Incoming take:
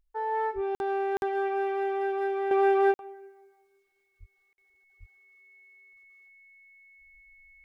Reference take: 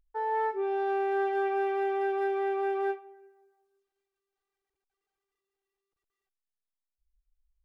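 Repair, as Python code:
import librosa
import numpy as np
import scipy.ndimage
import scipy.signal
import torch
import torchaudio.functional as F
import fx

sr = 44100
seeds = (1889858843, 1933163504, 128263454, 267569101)

y = fx.notch(x, sr, hz=2200.0, q=30.0)
y = fx.highpass(y, sr, hz=140.0, slope=24, at=(0.54, 0.66), fade=0.02)
y = fx.highpass(y, sr, hz=140.0, slope=24, at=(4.19, 4.31), fade=0.02)
y = fx.highpass(y, sr, hz=140.0, slope=24, at=(4.99, 5.11), fade=0.02)
y = fx.fix_interpolate(y, sr, at_s=(0.75, 1.17, 2.94, 4.53), length_ms=51.0)
y = fx.gain(y, sr, db=fx.steps((0.0, 0.0), (2.51, -7.5)))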